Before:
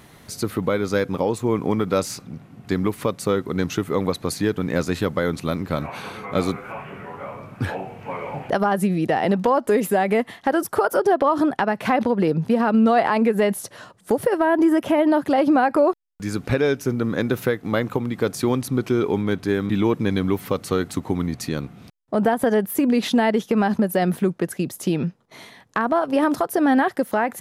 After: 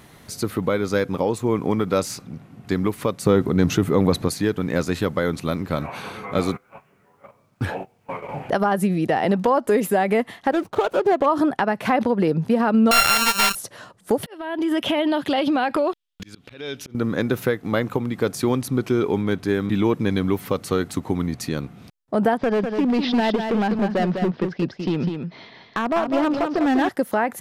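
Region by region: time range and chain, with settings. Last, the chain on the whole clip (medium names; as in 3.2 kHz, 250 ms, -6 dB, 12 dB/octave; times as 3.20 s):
3.25–4.28 s: bass shelf 460 Hz +7.5 dB + transient shaper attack -2 dB, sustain +4 dB
6.38–8.29 s: gate -31 dBFS, range -23 dB + word length cut 12-bit, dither none
10.51–11.26 s: median filter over 25 samples + treble shelf 8.9 kHz -6 dB
12.91–13.55 s: sorted samples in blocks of 32 samples + amplifier tone stack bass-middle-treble 10-0-10 + waveshaping leveller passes 3
14.23–16.95 s: peaking EQ 3.3 kHz +15 dB 0.92 oct + compression 4:1, threshold -17 dBFS + slow attack 508 ms
22.37–26.89 s: Chebyshev low-pass 5.2 kHz, order 5 + overload inside the chain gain 16.5 dB + delay 201 ms -6 dB
whole clip: none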